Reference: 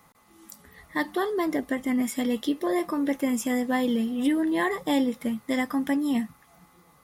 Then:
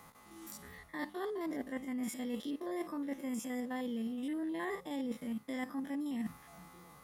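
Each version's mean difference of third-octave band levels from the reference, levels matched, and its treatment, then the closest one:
5.0 dB: spectrum averaged block by block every 50 ms
reversed playback
downward compressor 8 to 1, threshold −39 dBFS, peak gain reduction 18.5 dB
reversed playback
level +2.5 dB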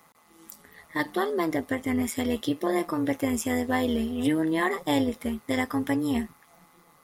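3.0 dB: high-pass filter 200 Hz 6 dB per octave
amplitude modulation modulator 160 Hz, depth 45%
level +3.5 dB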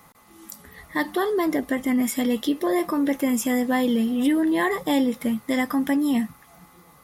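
1.0 dB: parametric band 12,000 Hz +5.5 dB 0.2 octaves
in parallel at −1 dB: brickwall limiter −24 dBFS, peak gain reduction 10.5 dB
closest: third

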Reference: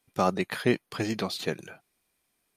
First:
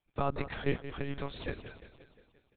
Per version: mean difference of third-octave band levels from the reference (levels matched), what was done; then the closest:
10.0 dB: repeating echo 175 ms, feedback 59%, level −12.5 dB
one-pitch LPC vocoder at 8 kHz 140 Hz
level −6.5 dB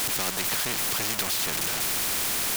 14.0 dB: converter with a step at zero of −28 dBFS
parametric band 520 Hz −4.5 dB
every bin compressed towards the loudest bin 4 to 1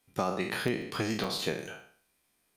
6.0 dB: peak hold with a decay on every bin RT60 0.51 s
downward compressor 3 to 1, threshold −28 dBFS, peak gain reduction 8.5 dB
regular buffer underruns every 0.14 s, samples 64, zero, from 0:00.54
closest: third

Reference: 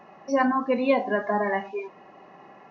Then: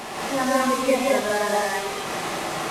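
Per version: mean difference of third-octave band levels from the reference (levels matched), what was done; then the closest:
17.5 dB: linear delta modulator 64 kbit/s, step −24.5 dBFS
low-shelf EQ 60 Hz −9.5 dB
reverb whose tail is shaped and stops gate 240 ms rising, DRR −6 dB
level −4 dB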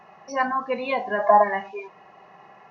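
2.5 dB: gain on a spectral selection 0:01.19–0:01.43, 470–1,200 Hz +11 dB
parametric band 280 Hz −13 dB 0.77 octaves
notch filter 560 Hz, Q 12
level +1.5 dB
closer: second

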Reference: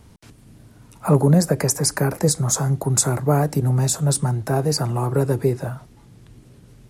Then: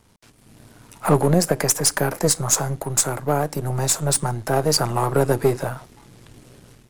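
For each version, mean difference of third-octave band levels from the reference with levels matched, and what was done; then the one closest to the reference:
4.5 dB: gain on one half-wave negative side −7 dB
low-shelf EQ 300 Hz −9.5 dB
automatic gain control gain up to 10.5 dB
level −1 dB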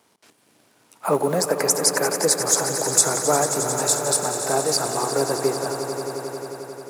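11.0 dB: mu-law and A-law mismatch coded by A
high-pass filter 440 Hz 12 dB per octave
on a send: echo that builds up and dies away 89 ms, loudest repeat 5, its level −12 dB
on the sum: level +2.5 dB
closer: first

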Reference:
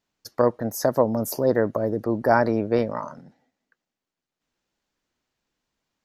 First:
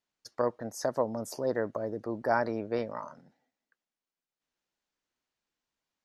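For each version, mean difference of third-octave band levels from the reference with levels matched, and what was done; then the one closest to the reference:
2.0 dB: low-pass filter 9,600 Hz 24 dB per octave
low-shelf EQ 370 Hz −6.5 dB
level −7 dB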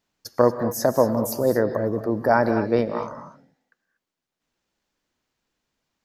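4.0 dB: reverb whose tail is shaped and stops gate 260 ms rising, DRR 8.5 dB
speech leveller within 5 dB 2 s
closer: first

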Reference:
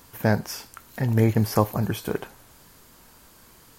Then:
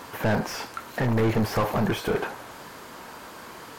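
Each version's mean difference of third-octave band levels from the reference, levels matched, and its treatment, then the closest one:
8.0 dB: mid-hump overdrive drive 35 dB, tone 1,100 Hz, clips at −5.5 dBFS
level −8.5 dB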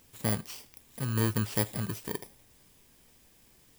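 3.5 dB: samples in bit-reversed order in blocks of 32 samples
level −8.5 dB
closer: second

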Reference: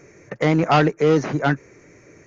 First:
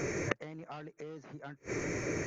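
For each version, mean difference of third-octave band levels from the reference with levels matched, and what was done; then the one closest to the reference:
15.5 dB: downward compressor 5 to 1, threshold −24 dBFS, peak gain reduction 12 dB
gate with flip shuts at −31 dBFS, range −32 dB
level +13 dB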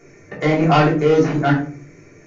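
4.0 dB: mains-hum notches 60/120/180/240/300 Hz
rectangular room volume 300 cubic metres, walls furnished, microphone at 3.3 metres
level −4 dB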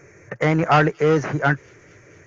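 1.5 dB: graphic EQ with 15 bands 100 Hz +6 dB, 250 Hz −6 dB, 1,600 Hz +5 dB, 4,000 Hz −6 dB
delay with a high-pass on its return 231 ms, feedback 73%, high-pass 4,300 Hz, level −19.5 dB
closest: third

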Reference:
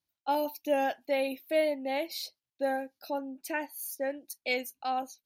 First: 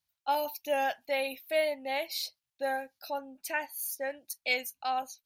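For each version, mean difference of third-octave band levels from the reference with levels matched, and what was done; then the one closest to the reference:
2.5 dB: parametric band 320 Hz −13.5 dB 1.3 octaves
level +3 dB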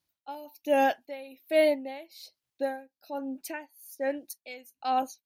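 5.0 dB: tremolo with a sine in dB 1.2 Hz, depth 20 dB
level +6 dB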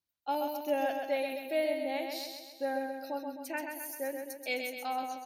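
8.0 dB: repeating echo 131 ms, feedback 54%, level −5 dB
level −4 dB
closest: first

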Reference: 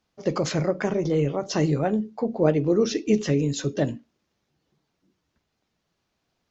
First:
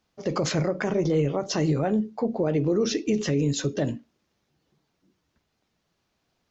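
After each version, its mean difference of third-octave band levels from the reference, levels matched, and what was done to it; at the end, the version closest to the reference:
1.5 dB: brickwall limiter −16.5 dBFS, peak gain reduction 10 dB
level +1.5 dB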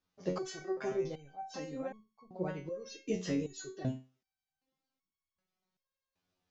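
6.5 dB: step-sequenced resonator 2.6 Hz 91–1,100 Hz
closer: first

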